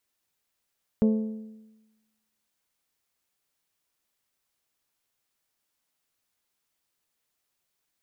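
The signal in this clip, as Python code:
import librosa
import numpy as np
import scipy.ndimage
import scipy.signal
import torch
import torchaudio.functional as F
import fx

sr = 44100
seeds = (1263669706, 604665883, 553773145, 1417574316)

y = fx.strike_metal(sr, length_s=1.55, level_db=-16.5, body='bell', hz=218.0, decay_s=1.1, tilt_db=8, modes=6)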